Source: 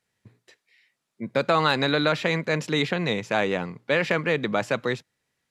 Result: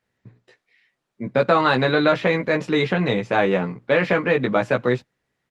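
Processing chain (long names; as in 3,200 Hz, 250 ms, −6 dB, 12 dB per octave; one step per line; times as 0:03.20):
low-pass filter 3,700 Hz 6 dB per octave
high-shelf EQ 2,300 Hz −4.5 dB
double-tracking delay 16 ms −4 dB
level +4.5 dB
Opus 20 kbit/s 48,000 Hz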